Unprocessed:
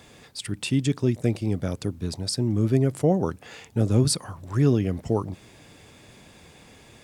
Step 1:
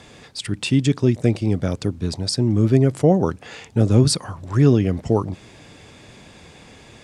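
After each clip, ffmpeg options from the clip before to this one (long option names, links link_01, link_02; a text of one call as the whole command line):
ffmpeg -i in.wav -af "lowpass=8100,volume=5.5dB" out.wav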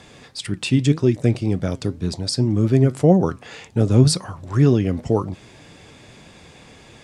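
ffmpeg -i in.wav -af "flanger=delay=5.1:depth=3.3:regen=81:speed=1.9:shape=triangular,volume=4dB" out.wav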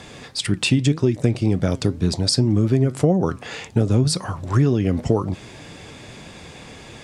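ffmpeg -i in.wav -af "acompressor=threshold=-19dB:ratio=6,volume=5.5dB" out.wav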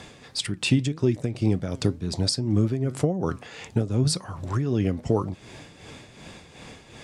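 ffmpeg -i in.wav -af "tremolo=f=2.7:d=0.61,volume=-2.5dB" out.wav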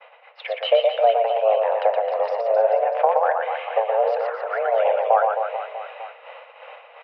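ffmpeg -i in.wav -af "highpass=frequency=180:width_type=q:width=0.5412,highpass=frequency=180:width_type=q:width=1.307,lowpass=frequency=2500:width_type=q:width=0.5176,lowpass=frequency=2500:width_type=q:width=0.7071,lowpass=frequency=2500:width_type=q:width=1.932,afreqshift=330,aecho=1:1:120|264|436.8|644.2|893:0.631|0.398|0.251|0.158|0.1,agate=range=-33dB:threshold=-41dB:ratio=3:detection=peak,volume=6dB" out.wav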